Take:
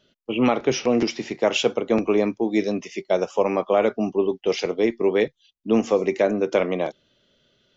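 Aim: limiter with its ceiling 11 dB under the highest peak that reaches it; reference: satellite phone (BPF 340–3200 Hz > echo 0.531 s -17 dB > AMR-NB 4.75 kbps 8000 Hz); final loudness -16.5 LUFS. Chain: limiter -17.5 dBFS; BPF 340–3200 Hz; echo 0.531 s -17 dB; gain +15.5 dB; AMR-NB 4.75 kbps 8000 Hz

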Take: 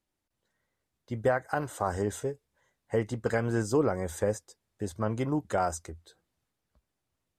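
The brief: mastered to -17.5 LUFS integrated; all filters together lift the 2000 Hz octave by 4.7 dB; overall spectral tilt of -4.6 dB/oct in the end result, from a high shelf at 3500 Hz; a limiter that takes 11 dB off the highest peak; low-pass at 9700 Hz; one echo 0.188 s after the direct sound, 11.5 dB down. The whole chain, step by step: LPF 9700 Hz; bell 2000 Hz +4.5 dB; high shelf 3500 Hz +8 dB; limiter -23.5 dBFS; echo 0.188 s -11.5 dB; gain +17.5 dB

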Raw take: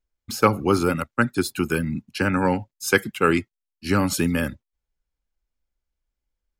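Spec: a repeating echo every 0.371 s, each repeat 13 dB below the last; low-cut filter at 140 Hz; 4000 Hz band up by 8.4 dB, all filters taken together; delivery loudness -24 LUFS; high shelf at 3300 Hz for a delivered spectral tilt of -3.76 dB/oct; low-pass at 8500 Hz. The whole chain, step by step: HPF 140 Hz; LPF 8500 Hz; high shelf 3300 Hz +3 dB; bell 4000 Hz +9 dB; feedback echo 0.371 s, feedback 22%, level -13 dB; gain -2 dB

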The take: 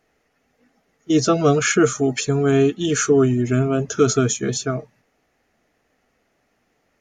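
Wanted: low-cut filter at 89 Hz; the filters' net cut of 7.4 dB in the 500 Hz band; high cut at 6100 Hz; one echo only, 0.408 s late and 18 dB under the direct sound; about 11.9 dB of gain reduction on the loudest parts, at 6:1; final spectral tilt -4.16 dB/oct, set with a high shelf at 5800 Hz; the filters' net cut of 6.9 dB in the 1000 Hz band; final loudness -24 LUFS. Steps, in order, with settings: HPF 89 Hz; LPF 6100 Hz; bell 500 Hz -8 dB; bell 1000 Hz -9 dB; high shelf 5800 Hz +8 dB; compressor 6:1, threshold -29 dBFS; echo 0.408 s -18 dB; gain +8 dB

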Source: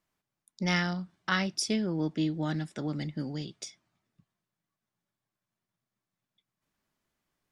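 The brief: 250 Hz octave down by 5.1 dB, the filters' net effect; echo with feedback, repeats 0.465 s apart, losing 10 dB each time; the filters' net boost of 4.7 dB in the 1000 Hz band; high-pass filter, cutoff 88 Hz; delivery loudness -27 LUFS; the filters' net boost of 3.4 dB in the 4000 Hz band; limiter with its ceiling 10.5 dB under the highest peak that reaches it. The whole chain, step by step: HPF 88 Hz; bell 250 Hz -8 dB; bell 1000 Hz +6.5 dB; bell 4000 Hz +4.5 dB; limiter -20 dBFS; feedback echo 0.465 s, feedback 32%, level -10 dB; gain +7.5 dB

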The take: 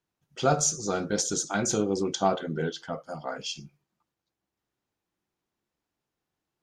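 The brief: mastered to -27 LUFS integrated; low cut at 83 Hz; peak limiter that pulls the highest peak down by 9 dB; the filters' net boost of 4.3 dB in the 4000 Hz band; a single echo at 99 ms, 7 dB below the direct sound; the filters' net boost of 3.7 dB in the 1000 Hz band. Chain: HPF 83 Hz; bell 1000 Hz +5.5 dB; bell 4000 Hz +5.5 dB; limiter -16 dBFS; echo 99 ms -7 dB; gain +1 dB

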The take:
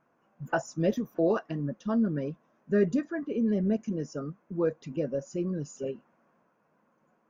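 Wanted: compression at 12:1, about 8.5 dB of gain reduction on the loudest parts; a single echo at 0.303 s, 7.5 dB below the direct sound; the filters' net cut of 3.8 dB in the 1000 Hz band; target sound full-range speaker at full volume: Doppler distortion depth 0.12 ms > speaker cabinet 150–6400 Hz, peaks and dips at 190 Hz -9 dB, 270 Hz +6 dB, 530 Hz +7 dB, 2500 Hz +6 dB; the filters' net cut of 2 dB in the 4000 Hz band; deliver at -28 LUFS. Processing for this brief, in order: bell 1000 Hz -7 dB; bell 4000 Hz -5 dB; compressor 12:1, threshold -29 dBFS; echo 0.303 s -7.5 dB; Doppler distortion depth 0.12 ms; speaker cabinet 150–6400 Hz, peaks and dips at 190 Hz -9 dB, 270 Hz +6 dB, 530 Hz +7 dB, 2500 Hz +6 dB; gain +6.5 dB

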